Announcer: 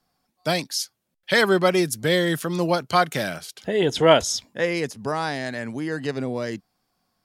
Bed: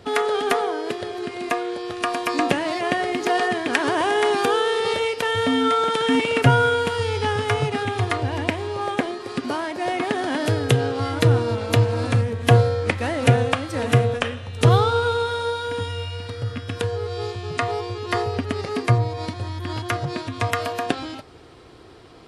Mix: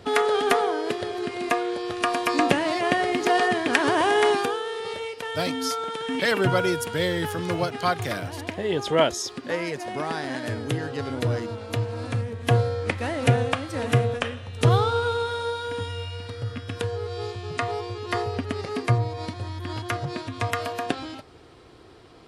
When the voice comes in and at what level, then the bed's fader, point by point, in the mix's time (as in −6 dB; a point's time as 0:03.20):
4.90 s, −5.0 dB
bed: 0:04.30 0 dB
0:04.59 −9.5 dB
0:11.72 −9.5 dB
0:13.04 −3.5 dB